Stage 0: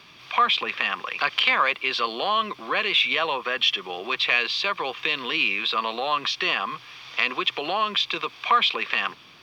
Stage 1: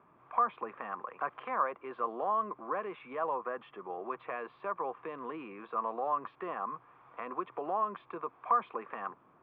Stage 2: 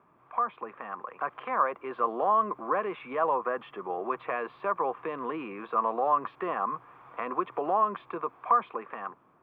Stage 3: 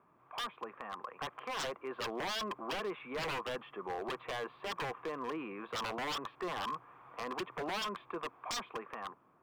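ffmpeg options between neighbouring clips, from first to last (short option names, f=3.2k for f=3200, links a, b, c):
-af "lowpass=f=1.2k:w=0.5412,lowpass=f=1.2k:w=1.3066,lowshelf=f=170:g=-9,volume=-5.5dB"
-af "dynaudnorm=f=420:g=7:m=7dB"
-af "aeval=exprs='0.0422*(abs(mod(val(0)/0.0422+3,4)-2)-1)':c=same,volume=-4.5dB"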